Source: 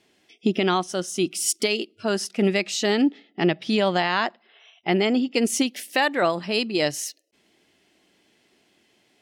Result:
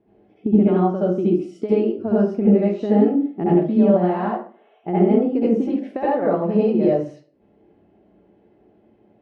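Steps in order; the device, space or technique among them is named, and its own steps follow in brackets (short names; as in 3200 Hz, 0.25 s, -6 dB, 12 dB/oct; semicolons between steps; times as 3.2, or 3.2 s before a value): television next door (compressor, threshold -23 dBFS, peak gain reduction 8 dB; LPF 570 Hz 12 dB/oct; reverb RT60 0.40 s, pre-delay 63 ms, DRR -8.5 dB); gain +4 dB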